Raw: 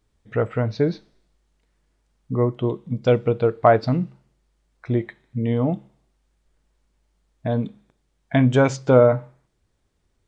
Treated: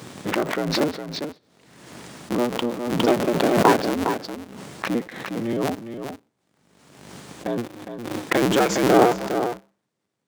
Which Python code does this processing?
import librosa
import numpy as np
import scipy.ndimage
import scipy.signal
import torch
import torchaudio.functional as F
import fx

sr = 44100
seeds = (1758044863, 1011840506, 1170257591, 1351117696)

p1 = fx.cycle_switch(x, sr, every=2, mode='inverted')
p2 = scipy.signal.sosfilt(scipy.signal.butter(4, 140.0, 'highpass', fs=sr, output='sos'), p1)
p3 = p2 + 10.0 ** (-8.0 / 20.0) * np.pad(p2, (int(409 * sr / 1000.0), 0))[:len(p2)]
p4 = np.sign(p3) * np.maximum(np.abs(p3) - 10.0 ** (-35.5 / 20.0), 0.0)
p5 = p3 + (p4 * 10.0 ** (-3.0 / 20.0))
p6 = fx.pre_swell(p5, sr, db_per_s=45.0)
y = p6 * 10.0 ** (-6.5 / 20.0)